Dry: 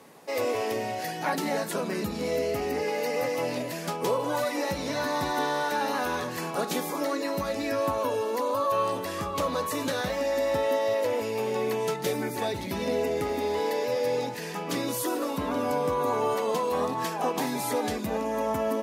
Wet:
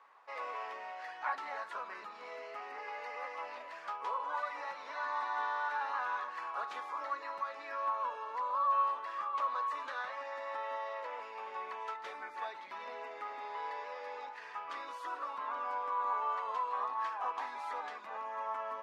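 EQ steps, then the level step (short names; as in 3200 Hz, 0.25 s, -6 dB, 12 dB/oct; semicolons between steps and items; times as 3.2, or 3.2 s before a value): ladder band-pass 1300 Hz, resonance 50%; +3.5 dB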